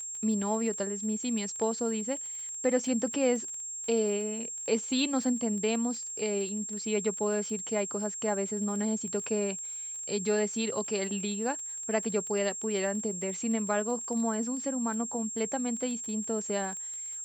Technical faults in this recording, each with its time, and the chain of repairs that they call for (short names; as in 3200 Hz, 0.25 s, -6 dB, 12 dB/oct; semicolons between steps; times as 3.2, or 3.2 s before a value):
crackle 26/s -38 dBFS
tone 7500 Hz -36 dBFS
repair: de-click; notch 7500 Hz, Q 30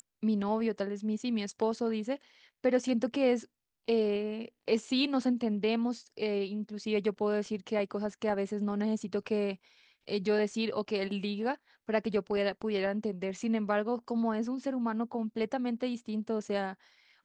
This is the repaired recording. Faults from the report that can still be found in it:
none